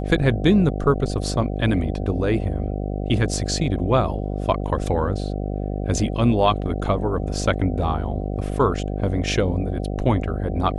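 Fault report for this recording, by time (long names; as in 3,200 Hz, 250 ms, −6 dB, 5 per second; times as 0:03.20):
mains buzz 50 Hz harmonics 15 −26 dBFS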